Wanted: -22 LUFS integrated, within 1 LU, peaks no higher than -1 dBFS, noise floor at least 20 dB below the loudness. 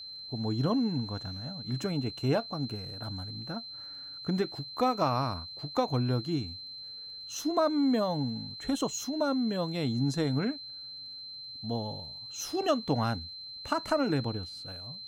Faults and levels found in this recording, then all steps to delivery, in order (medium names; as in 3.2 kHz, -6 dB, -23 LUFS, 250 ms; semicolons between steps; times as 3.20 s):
tick rate 41 per s; steady tone 4.1 kHz; tone level -41 dBFS; loudness -32.0 LUFS; peak level -15.5 dBFS; loudness target -22.0 LUFS
-> de-click; band-stop 4.1 kHz, Q 30; trim +10 dB